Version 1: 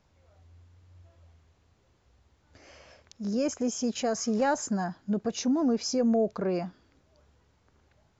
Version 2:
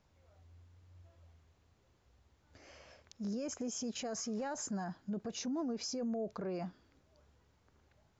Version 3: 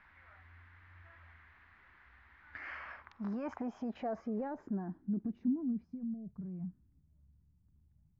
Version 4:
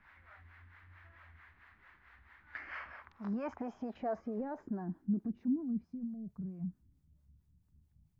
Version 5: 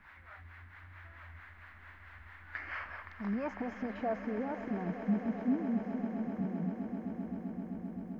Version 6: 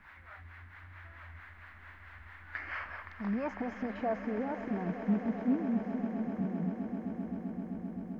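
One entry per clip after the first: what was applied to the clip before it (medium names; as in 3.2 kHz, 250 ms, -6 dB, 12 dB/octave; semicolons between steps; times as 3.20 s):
peak limiter -27.5 dBFS, peak gain reduction 11.5 dB; trim -4.5 dB
graphic EQ 125/500/1000/2000/4000 Hz -9/-12/+5/+12/+7 dB; low-pass sweep 1.7 kHz -> 150 Hz, 2.51–6.18 s; trim +4.5 dB
harmonic tremolo 4.5 Hz, depth 70%, crossover 400 Hz; trim +3.5 dB
in parallel at -1 dB: compression, threshold -46 dBFS, peak gain reduction 16.5 dB; on the sum: echo with a slow build-up 130 ms, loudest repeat 8, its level -14 dB
loudspeaker Doppler distortion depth 0.15 ms; trim +1.5 dB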